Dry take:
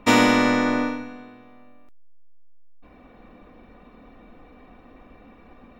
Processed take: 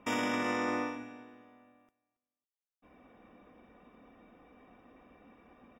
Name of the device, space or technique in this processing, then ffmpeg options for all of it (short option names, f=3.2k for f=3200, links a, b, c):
PA system with an anti-feedback notch: -filter_complex "[0:a]asettb=1/sr,asplit=3[a][b][c];[a]atrim=end=0.424[d];[b]atrim=start=0.42:end=0.96,asetpts=PTS-STARTPTS,afade=t=in:d=0.004:c=qsin,afade=t=out:st=0.536:d=0.004:c=qsin,aecho=1:1:5.7:0.52,atrim=end_sample=23814[e];[c]atrim=start=0.956[f];[d][e]acrossfade=d=0.004:c1=hsin:c2=qsin[g];[g][f]acrossfade=d=0.004:c1=qsin:c2=hsin,highpass=f=130:p=1,asuperstop=centerf=4200:order=20:qfactor=4.6,aecho=1:1:276|552:0.0944|0.0245,alimiter=limit=-15.5dB:level=0:latency=1:release=17,volume=-8.5dB"